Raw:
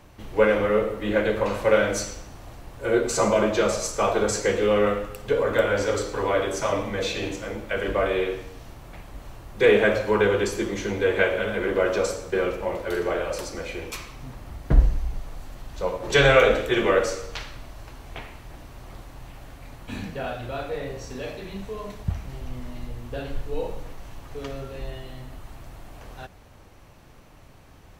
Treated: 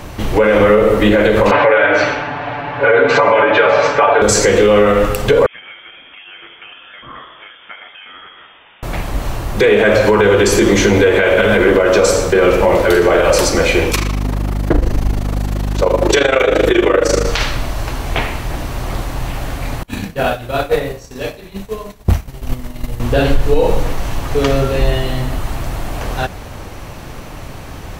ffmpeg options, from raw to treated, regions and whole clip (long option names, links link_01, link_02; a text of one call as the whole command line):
ffmpeg -i in.wav -filter_complex "[0:a]asettb=1/sr,asplit=3[link_01][link_02][link_03];[link_01]atrim=end=1.514[link_04];[link_02]atrim=start=1.51:end=4.22,asetpts=PTS-STARTPTS,afade=type=in:duration=0.004:curve=qsin,afade=type=out:start_time=2.706:duration=0.004:curve=qsin,highpass=180,equalizer=frequency=190:width_type=q:width=4:gain=-8,equalizer=frequency=350:width_type=q:width=4:gain=-8,equalizer=frequency=850:width_type=q:width=4:gain=6,equalizer=frequency=1600:width_type=q:width=4:gain=7,equalizer=frequency=2300:width_type=q:width=4:gain=3,lowpass=frequency=3100:width=0.5412,lowpass=frequency=3100:width=1.3066,aecho=1:1:6.9:0.97,atrim=end_sample=119511[link_05];[link_03]atrim=start=4.216[link_06];[link_04][link_05]acrossfade=duration=0.004:curve1=hsin:curve2=qsin[link_07];[link_07][link_06]acrossfade=duration=0.004:curve1=qsin:curve2=hsin,asettb=1/sr,asplit=3[link_08][link_09][link_10];[link_08]atrim=end=5.464[link_11];[link_09]atrim=start=5.46:end=8.83,asetpts=PTS-STARTPTS,afade=type=in:duration=0.004:curve=qsin,afade=type=out:start_time=3.366:duration=0.004:curve=qsin,acompressor=threshold=-34dB:ratio=12:attack=3.2:release=140:knee=1:detection=peak,aderivative,lowpass=frequency=3100:width_type=q:width=0.5098,lowpass=frequency=3100:width_type=q:width=0.6013,lowpass=frequency=3100:width_type=q:width=0.9,lowpass=frequency=3100:width_type=q:width=2.563,afreqshift=-3700[link_12];[link_10]atrim=start=8.826[link_13];[link_11][link_12]acrossfade=duration=0.004:curve1=hsin:curve2=qsin[link_14];[link_14][link_13]acrossfade=duration=0.004:curve1=qsin:curve2=hsin,asettb=1/sr,asplit=3[link_15][link_16][link_17];[link_15]atrim=end=13.914[link_18];[link_16]atrim=start=13.91:end=17.27,asetpts=PTS-STARTPTS,afade=type=in:duration=0.004:curve=qsin,afade=type=out:start_time=3.356:duration=0.004:curve=qsin,lowshelf=frequency=240:width_type=q:width=3:gain=-8.5,tremolo=f=26:d=0.857,aeval=exprs='val(0)+0.0141*(sin(2*PI*50*n/s)+sin(2*PI*2*50*n/s)/2+sin(2*PI*3*50*n/s)/3+sin(2*PI*4*50*n/s)/4+sin(2*PI*5*50*n/s)/5)':channel_layout=same[link_19];[link_17]atrim=start=17.266[link_20];[link_18][link_19]acrossfade=duration=0.004:curve1=hsin:curve2=qsin[link_21];[link_21][link_20]acrossfade=duration=0.004:curve1=qsin:curve2=hsin,asettb=1/sr,asplit=3[link_22][link_23][link_24];[link_22]atrim=end=19.834[link_25];[link_23]atrim=start=19.83:end=23,asetpts=PTS-STARTPTS,afade=type=in:duration=0.004:curve=qsin,afade=type=out:start_time=3.166:duration=0.004:curve=qsin,agate=range=-33dB:threshold=-25dB:ratio=3:release=100:detection=peak,highshelf=frequency=8400:gain=10.5,volume=26dB,asoftclip=hard,volume=-26dB[link_26];[link_24]atrim=start=22.996[link_27];[link_25][link_26]acrossfade=duration=0.004:curve1=hsin:curve2=qsin[link_28];[link_28][link_27]acrossfade=duration=0.004:curve1=qsin:curve2=hsin,acompressor=threshold=-24dB:ratio=6,alimiter=level_in=21.5dB:limit=-1dB:release=50:level=0:latency=1,volume=-1dB" out.wav